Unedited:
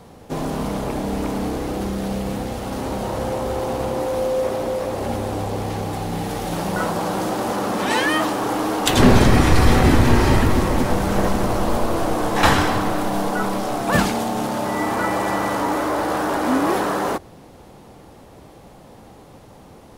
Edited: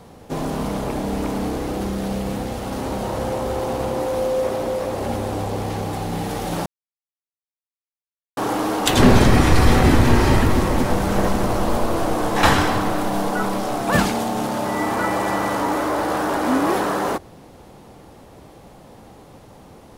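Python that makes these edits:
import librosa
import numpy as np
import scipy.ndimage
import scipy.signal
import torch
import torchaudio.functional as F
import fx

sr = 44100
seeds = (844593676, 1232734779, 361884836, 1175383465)

y = fx.edit(x, sr, fx.silence(start_s=6.66, length_s=1.71), tone=tone)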